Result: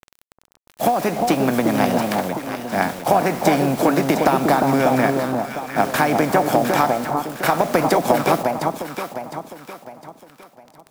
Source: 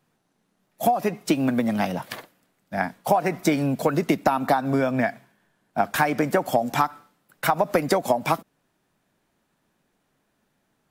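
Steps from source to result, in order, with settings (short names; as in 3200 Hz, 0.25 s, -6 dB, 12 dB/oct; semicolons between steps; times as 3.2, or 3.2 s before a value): per-bin compression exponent 0.6; requantised 6-bit, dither none; echo with dull and thin repeats by turns 0.354 s, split 1100 Hz, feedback 61%, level -3 dB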